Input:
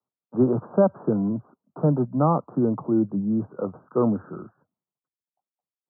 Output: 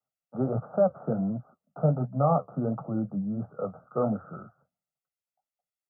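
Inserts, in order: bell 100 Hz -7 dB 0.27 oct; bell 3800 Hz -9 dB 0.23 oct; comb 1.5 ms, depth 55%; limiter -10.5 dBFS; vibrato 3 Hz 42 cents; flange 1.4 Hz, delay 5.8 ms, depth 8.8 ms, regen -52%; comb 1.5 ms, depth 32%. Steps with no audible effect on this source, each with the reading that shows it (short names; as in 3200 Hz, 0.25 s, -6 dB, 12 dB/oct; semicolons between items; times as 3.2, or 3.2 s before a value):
bell 3800 Hz: input band ends at 1400 Hz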